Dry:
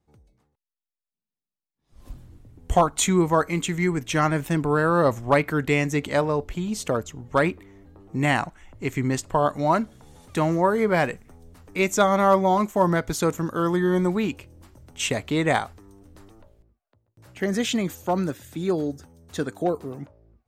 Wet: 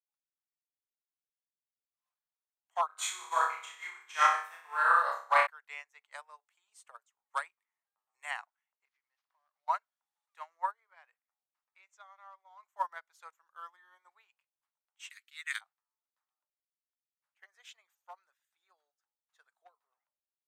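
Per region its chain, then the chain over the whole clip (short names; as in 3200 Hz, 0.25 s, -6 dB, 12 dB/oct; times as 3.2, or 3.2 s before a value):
2.86–5.47 doubler 40 ms -6 dB + flutter echo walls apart 5.1 m, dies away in 0.98 s
6.12–8.31 bell 8900 Hz +13 dB 0.61 oct + three-band squash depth 40%
8.85–9.68 CVSD 32 kbps + compressor 4:1, threshold -39 dBFS
10.71–12.63 block floating point 7-bit + LPF 7300 Hz + compressor 2.5:1, threshold -27 dBFS
15.1–15.61 steep high-pass 1400 Hz + tilt +4 dB/oct + notch 7600 Hz, Q 13
whole clip: inverse Chebyshev high-pass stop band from 270 Hz, stop band 60 dB; bell 13000 Hz -8.5 dB 2.9 oct; upward expander 2.5:1, over -41 dBFS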